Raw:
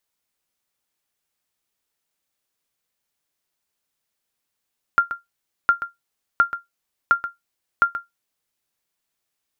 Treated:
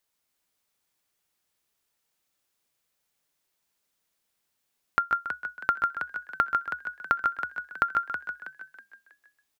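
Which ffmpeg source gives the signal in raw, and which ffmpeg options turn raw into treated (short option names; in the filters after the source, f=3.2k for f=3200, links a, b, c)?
-f lavfi -i "aevalsrc='0.473*(sin(2*PI*1390*mod(t,0.71))*exp(-6.91*mod(t,0.71)/0.16)+0.251*sin(2*PI*1390*max(mod(t,0.71)-0.13,0))*exp(-6.91*max(mod(t,0.71)-0.13,0)/0.16))':d=3.55:s=44100"
-filter_complex "[0:a]asplit=2[a][b];[b]aecho=0:1:148:0.531[c];[a][c]amix=inputs=2:normalize=0,acompressor=threshold=-21dB:ratio=6,asplit=2[d][e];[e]asplit=4[f][g][h][i];[f]adelay=322,afreqshift=71,volume=-9dB[j];[g]adelay=644,afreqshift=142,volume=-17.9dB[k];[h]adelay=966,afreqshift=213,volume=-26.7dB[l];[i]adelay=1288,afreqshift=284,volume=-35.6dB[m];[j][k][l][m]amix=inputs=4:normalize=0[n];[d][n]amix=inputs=2:normalize=0"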